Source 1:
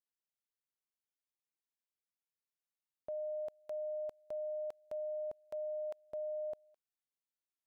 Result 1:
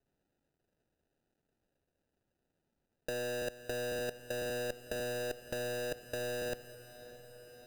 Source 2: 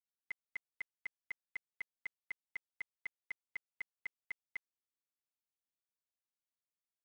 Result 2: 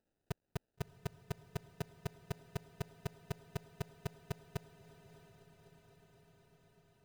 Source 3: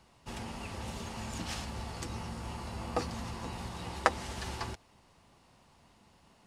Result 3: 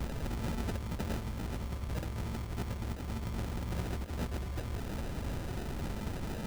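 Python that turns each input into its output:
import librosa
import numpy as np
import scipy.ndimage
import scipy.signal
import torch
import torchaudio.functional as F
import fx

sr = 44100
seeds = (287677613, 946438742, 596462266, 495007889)

y = fx.halfwave_hold(x, sr)
y = fx.low_shelf(y, sr, hz=81.0, db=11.5)
y = fx.over_compress(y, sr, threshold_db=-42.0, ratio=-1.0)
y = fx.sample_hold(y, sr, seeds[0], rate_hz=1100.0, jitter_pct=0)
y = fx.echo_diffused(y, sr, ms=636, feedback_pct=71, wet_db=-15)
y = y * librosa.db_to_amplitude(5.5)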